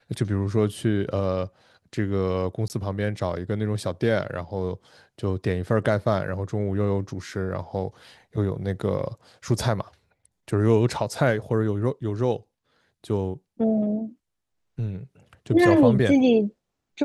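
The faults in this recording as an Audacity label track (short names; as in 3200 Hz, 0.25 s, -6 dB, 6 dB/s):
2.680000	2.700000	gap 19 ms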